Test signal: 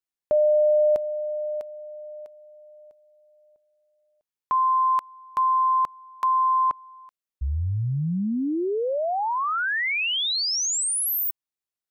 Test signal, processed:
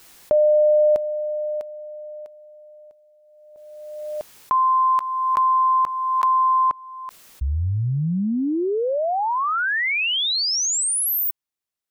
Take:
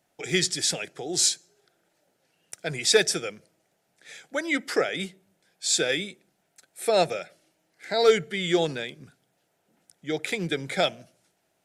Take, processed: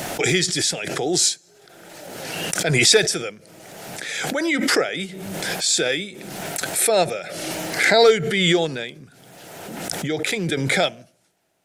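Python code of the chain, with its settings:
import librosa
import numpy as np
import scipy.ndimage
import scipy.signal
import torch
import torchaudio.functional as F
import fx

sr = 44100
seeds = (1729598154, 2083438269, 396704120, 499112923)

y = fx.pre_swell(x, sr, db_per_s=29.0)
y = y * librosa.db_to_amplitude(3.0)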